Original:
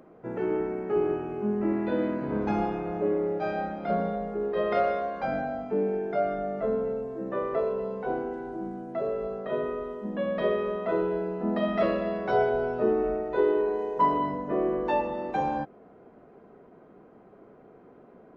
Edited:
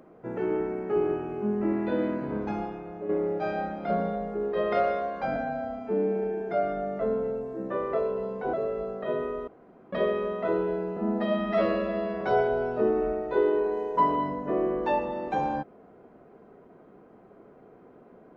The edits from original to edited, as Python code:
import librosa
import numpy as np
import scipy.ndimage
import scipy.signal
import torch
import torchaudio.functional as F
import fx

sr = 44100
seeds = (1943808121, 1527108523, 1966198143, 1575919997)

y = fx.edit(x, sr, fx.fade_out_to(start_s=2.16, length_s=0.93, curve='qua', floor_db=-8.5),
    fx.stretch_span(start_s=5.36, length_s=0.77, factor=1.5),
    fx.cut(start_s=8.15, length_s=0.82),
    fx.room_tone_fill(start_s=9.91, length_s=0.45),
    fx.stretch_span(start_s=11.4, length_s=0.83, factor=1.5), tone=tone)